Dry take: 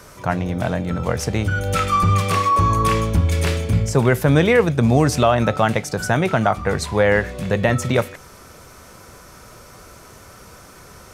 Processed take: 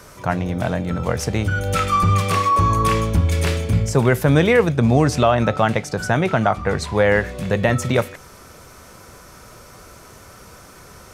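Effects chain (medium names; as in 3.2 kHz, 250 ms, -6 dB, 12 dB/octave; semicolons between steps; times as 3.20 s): 4.72–6.96 s: treble shelf 9.5 kHz -9.5 dB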